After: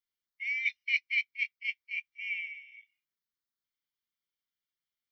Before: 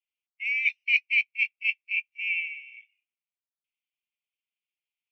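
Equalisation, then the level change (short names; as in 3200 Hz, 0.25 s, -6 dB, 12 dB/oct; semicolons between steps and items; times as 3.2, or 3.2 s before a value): fixed phaser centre 2600 Hz, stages 6; +3.5 dB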